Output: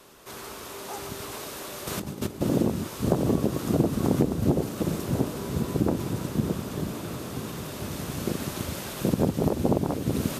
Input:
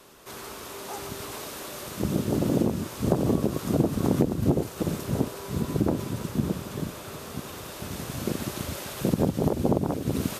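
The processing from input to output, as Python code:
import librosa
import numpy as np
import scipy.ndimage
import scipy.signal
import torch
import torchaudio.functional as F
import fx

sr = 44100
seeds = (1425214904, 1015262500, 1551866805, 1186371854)

y = fx.over_compress(x, sr, threshold_db=-32.0, ratio=-0.5, at=(1.87, 2.41))
y = fx.echo_diffused(y, sr, ms=1165, feedback_pct=65, wet_db=-12)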